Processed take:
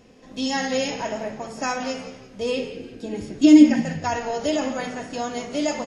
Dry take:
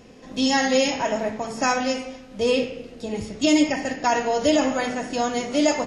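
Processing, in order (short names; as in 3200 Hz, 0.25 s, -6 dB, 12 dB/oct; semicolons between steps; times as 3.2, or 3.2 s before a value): 2.76–3.8 small resonant body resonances 300/1600 Hz, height 13 dB; on a send: frequency-shifting echo 0.172 s, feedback 39%, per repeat -70 Hz, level -14 dB; on the sum: gain -4.5 dB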